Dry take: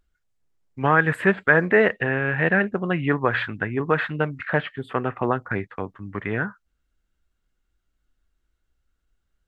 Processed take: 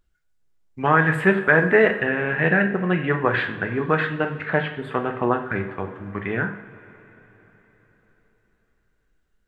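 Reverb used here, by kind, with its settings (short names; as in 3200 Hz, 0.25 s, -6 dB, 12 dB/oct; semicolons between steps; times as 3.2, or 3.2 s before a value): two-slope reverb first 0.51 s, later 4.3 s, from -18 dB, DRR 4.5 dB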